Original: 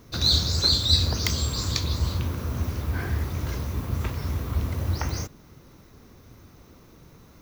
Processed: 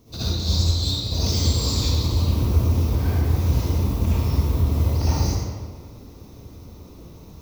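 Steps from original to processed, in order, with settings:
compressor whose output falls as the input rises −26 dBFS, ratio −0.5
parametric band 1,600 Hz −13.5 dB 0.92 octaves
convolution reverb RT60 1.7 s, pre-delay 54 ms, DRR −11.5 dB
level −5.5 dB

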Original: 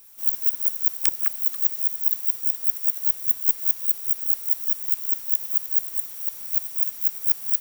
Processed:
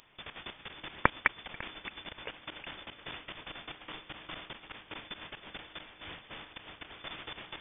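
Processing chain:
delay with pitch and tempo change per echo 197 ms, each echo −5 semitones, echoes 2, each echo −6 dB
output level in coarse steps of 20 dB
voice inversion scrambler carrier 3,500 Hz
level +15 dB

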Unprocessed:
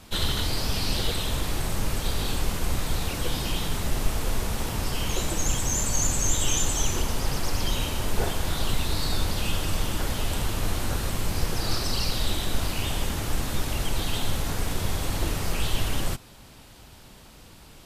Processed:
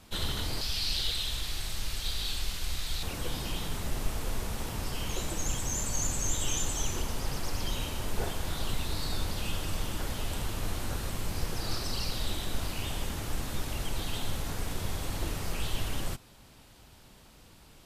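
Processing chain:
0:00.61–0:03.03: octave-band graphic EQ 125/250/500/1,000/4,000 Hz −7/−8/−7/−5/+8 dB
level −6.5 dB

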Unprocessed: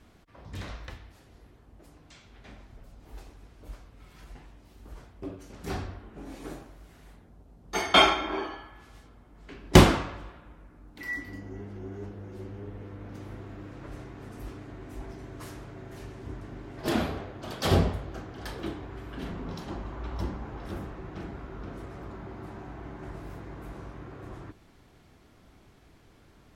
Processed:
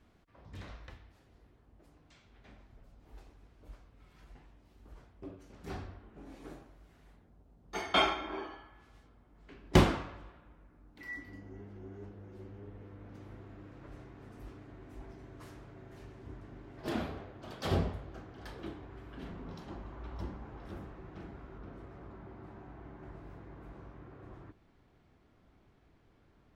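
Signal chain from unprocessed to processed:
parametric band 12,000 Hz −6.5 dB 1.9 octaves, from 0:21.58 −14.5 dB
level −8 dB

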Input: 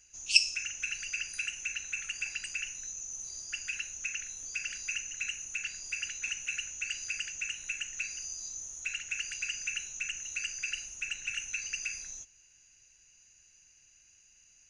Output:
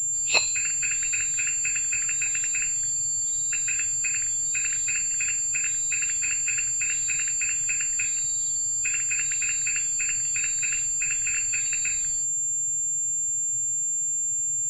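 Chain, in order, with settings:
hearing-aid frequency compression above 2,500 Hz 1.5 to 1
noise in a band 98–150 Hz −63 dBFS
switching amplifier with a slow clock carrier 7,300 Hz
level +8.5 dB

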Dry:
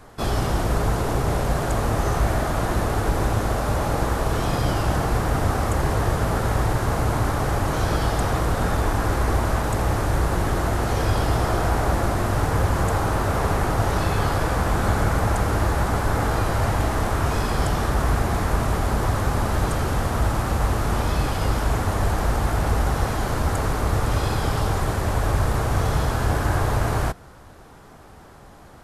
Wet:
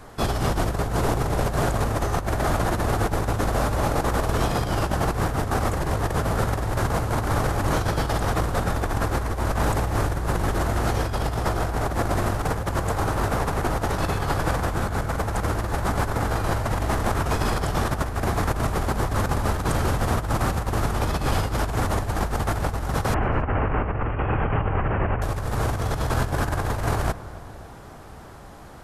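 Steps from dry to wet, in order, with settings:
0:23.14–0:25.22: Butterworth low-pass 2,900 Hz 96 dB per octave
compressor whose output falls as the input rises −23 dBFS, ratio −0.5
feedback echo with a low-pass in the loop 274 ms, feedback 65%, low-pass 1,600 Hz, level −16 dB

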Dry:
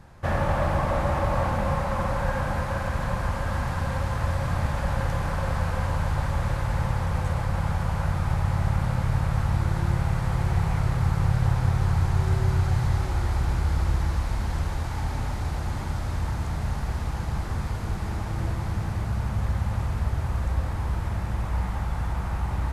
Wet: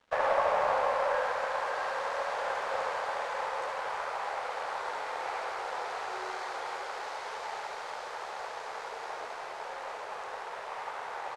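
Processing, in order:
Chebyshev high-pass filter 430 Hz, order 5
in parallel at −8 dB: asymmetric clip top −34 dBFS
on the sum: time stretch by overlap-add 0.5×, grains 26 ms
dead-zone distortion −51.5 dBFS
high-frequency loss of the air 81 metres
on a send: single-tap delay 72 ms −6 dB

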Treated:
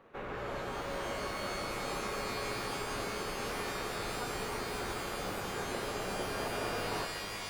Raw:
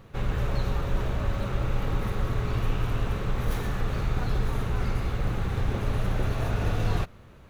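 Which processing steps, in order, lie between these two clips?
three-way crossover with the lows and the highs turned down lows −22 dB, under 260 Hz, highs −14 dB, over 2,600 Hz
reverb with rising layers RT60 3.9 s, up +12 semitones, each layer −2 dB, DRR 4 dB
level −3 dB

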